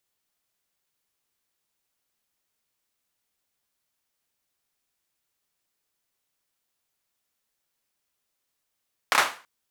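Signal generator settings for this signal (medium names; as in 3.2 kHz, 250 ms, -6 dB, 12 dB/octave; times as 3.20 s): hand clap length 0.33 s, bursts 3, apart 29 ms, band 1.2 kHz, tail 0.36 s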